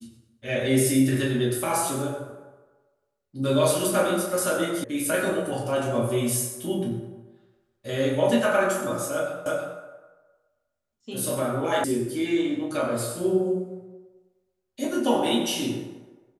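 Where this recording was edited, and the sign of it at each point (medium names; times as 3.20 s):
4.84 s: sound stops dead
9.46 s: repeat of the last 0.32 s
11.84 s: sound stops dead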